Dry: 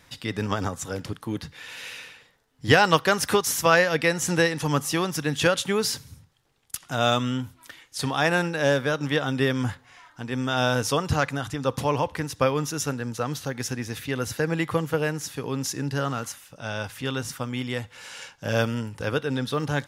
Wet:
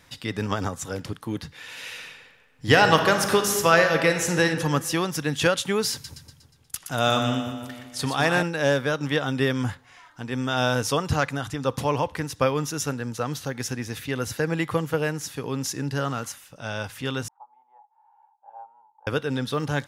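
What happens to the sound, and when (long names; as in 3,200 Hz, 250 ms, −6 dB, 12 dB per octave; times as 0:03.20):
0:01.70–0:04.44: thrown reverb, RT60 1.5 s, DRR 5 dB
0:05.92–0:08.43: echo with a time of its own for lows and highs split 1,100 Hz, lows 162 ms, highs 120 ms, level −7 dB
0:17.28–0:19.07: flat-topped band-pass 850 Hz, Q 7.1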